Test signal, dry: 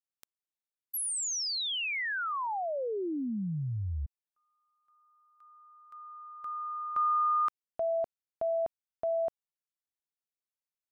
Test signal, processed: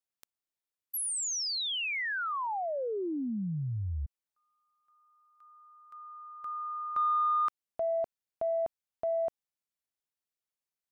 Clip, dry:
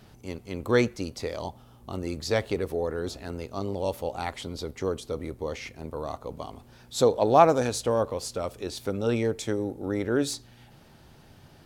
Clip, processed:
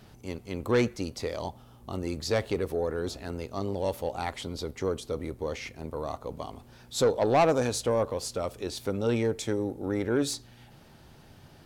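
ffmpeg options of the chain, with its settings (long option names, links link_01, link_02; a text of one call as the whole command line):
ffmpeg -i in.wav -af "asoftclip=type=tanh:threshold=-16dB" out.wav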